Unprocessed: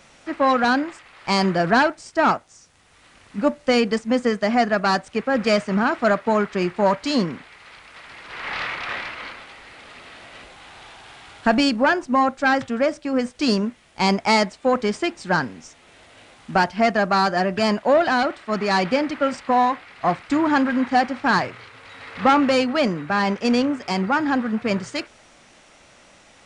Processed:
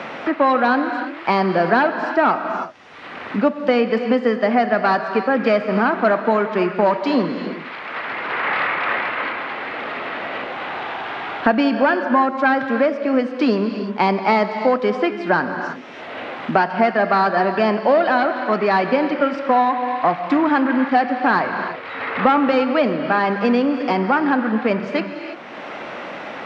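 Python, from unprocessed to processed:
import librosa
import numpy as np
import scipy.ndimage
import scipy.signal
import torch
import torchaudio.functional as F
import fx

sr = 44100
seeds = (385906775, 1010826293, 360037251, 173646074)

y = scipy.signal.sosfilt(scipy.signal.butter(2, 240.0, 'highpass', fs=sr, output='sos'), x)
y = fx.air_absorb(y, sr, metres=320.0)
y = fx.rev_gated(y, sr, seeds[0], gate_ms=360, shape='flat', drr_db=8.5)
y = fx.band_squash(y, sr, depth_pct=70)
y = y * 10.0 ** (4.0 / 20.0)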